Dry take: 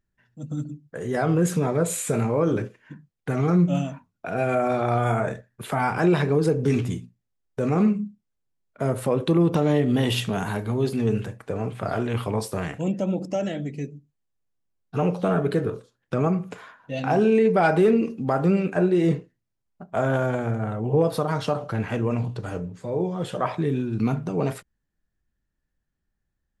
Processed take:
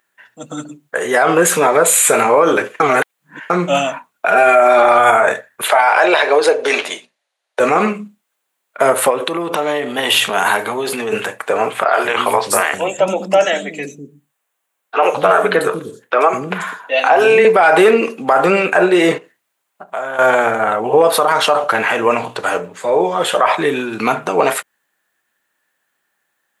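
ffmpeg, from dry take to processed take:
-filter_complex "[0:a]asettb=1/sr,asplit=3[a][b][c];[a]atrim=end=4.284[d];[b]atrim=start=4.28:end=4.99,asetpts=PTS-STARTPTS,afade=t=in:d=0.004:c=qsin,afade=t=out:st=0.706:d=0.004:c=qsin,aecho=1:1:5:0.65,atrim=end_sample=31311[e];[c]atrim=start=4.986[f];[d][e]acrossfade=d=0.004:c1=hsin:c2=qsin[g];[g][f]acrossfade=d=0.004:c1=qsin:c2=hsin,asettb=1/sr,asplit=3[h][i][j];[h]atrim=end=5.684[k];[i]atrim=start=5.68:end=7.6,asetpts=PTS-STARTPTS,afade=t=in:d=0.004:c=qsin,afade=t=out:st=1.916:d=0.004:c=qsin,highpass=490,equalizer=f=600:t=q:w=4:g=8,equalizer=f=1.2k:t=q:w=4:g=-4,equalizer=f=4.1k:t=q:w=4:g=5,equalizer=f=7.8k:t=q:w=4:g=-8,lowpass=f=9.3k:w=0.5412,lowpass=f=9.3k:w=1.3066[l];[j]atrim=start=7.596[m];[k][l]acrossfade=d=0.004:c1=hsin:c2=qsin[n];[n][m]acrossfade=d=0.004:c1=qsin:c2=hsin,asettb=1/sr,asplit=3[o][p][q];[o]atrim=end=9.104[r];[p]atrim=start=9.1:end=11.12,asetpts=PTS-STARTPTS,afade=t=in:d=0.004:c=qsin,afade=t=out:st=2.016:d=0.004:c=qsin,acompressor=threshold=-24dB:ratio=10:attack=3.2:release=140:knee=1:detection=peak[s];[q]atrim=start=11.116[t];[r][s]acrossfade=d=0.004:c1=hsin:c2=qsin[u];[u][t]acrossfade=d=0.004:c1=qsin:c2=hsin,asettb=1/sr,asplit=3[v][w][x];[v]atrim=end=11.844[y];[w]atrim=start=11.84:end=17.45,asetpts=PTS-STARTPTS,afade=t=in:d=0.004:c=qsin,afade=t=out:st=5.606:d=0.004:c=qsin,acrossover=split=300|4500[z][aa][ab];[ab]adelay=90[ac];[z]adelay=200[ad];[ad][aa][ac]amix=inputs=3:normalize=0,atrim=end_sample=247401[ae];[x]atrim=start=17.446[af];[y][ae]acrossfade=d=0.004:c1=hsin:c2=qsin[ag];[ag][af]acrossfade=d=0.004:c1=qsin:c2=hsin,asettb=1/sr,asplit=3[ah][ai][aj];[ah]atrim=end=19.184[ak];[ai]atrim=start=19.18:end=20.19,asetpts=PTS-STARTPTS,afade=t=in:d=0.004:c=qsin,afade=t=out:st=1.006:d=0.004:c=qsin,acompressor=threshold=-44dB:ratio=2.5:attack=3.2:release=140:knee=1:detection=peak[al];[aj]atrim=start=20.186[am];[ak][al]acrossfade=d=0.004:c1=hsin:c2=qsin[an];[an][am]acrossfade=d=0.004:c1=qsin:c2=hsin,asplit=3[ao][ap][aq];[ao]atrim=end=2.802[ar];[ap]atrim=start=2.798:end=3.502,asetpts=PTS-STARTPTS,areverse[as];[aq]atrim=start=3.498[at];[ar][as]acrossfade=d=0.004:c1=hsin:c2=hsin[au];[au][at]acrossfade=d=0.004:c1=hsin:c2=hsin,highpass=770,equalizer=f=5.2k:t=o:w=0.68:g=-8,alimiter=level_in=23dB:limit=-1dB:release=50:level=0:latency=1,volume=-1dB"

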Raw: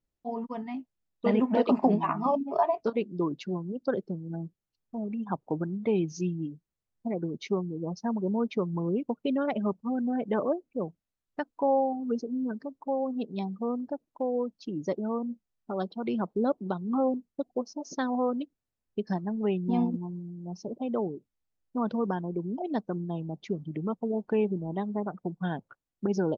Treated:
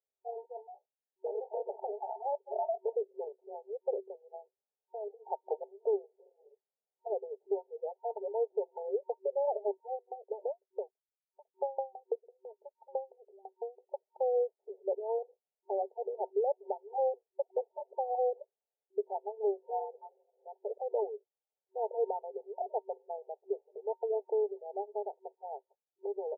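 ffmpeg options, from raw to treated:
-filter_complex "[0:a]asettb=1/sr,asplit=3[a][b][c];[a]atrim=end=9.954[d];[b]atrim=start=9.95:end=13.94,asetpts=PTS-STARTPTS,afade=t=in:d=0.004:c=qsin,afade=t=out:st=3.986:d=0.004:c=qsin,aeval=exprs='val(0)*pow(10,-35*if(lt(mod(6*n/s,1),2*abs(6)/1000),1-mod(6*n/s,1)/(2*abs(6)/1000),(mod(6*n/s,1)-2*abs(6)/1000)/(1-2*abs(6)/1000))/20)':c=same[e];[c]atrim=start=13.936[f];[d][e]acrossfade=d=0.004:c1=hsin:c2=qsin[g];[g][f]acrossfade=d=0.004:c1=qsin:c2=hsin,afftfilt=real='re*between(b*sr/4096,380,920)':imag='im*between(b*sr/4096,380,920)':win_size=4096:overlap=0.75,alimiter=limit=-24dB:level=0:latency=1:release=206,dynaudnorm=f=600:g=9:m=6dB,volume=-4.5dB"

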